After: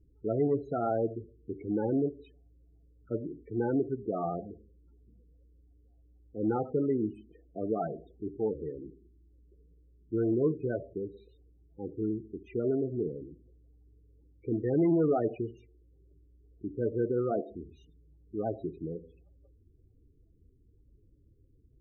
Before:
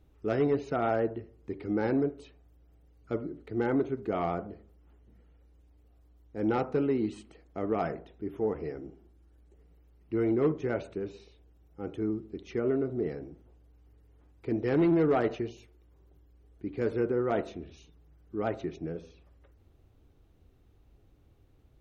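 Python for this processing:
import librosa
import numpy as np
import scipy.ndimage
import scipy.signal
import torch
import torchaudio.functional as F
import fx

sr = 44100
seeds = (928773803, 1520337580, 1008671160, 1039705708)

y = fx.spec_topn(x, sr, count=16)
y = fx.dynamic_eq(y, sr, hz=120.0, q=4.4, threshold_db=-49.0, ratio=4.0, max_db=3)
y = F.gain(torch.from_numpy(y), -1.0).numpy()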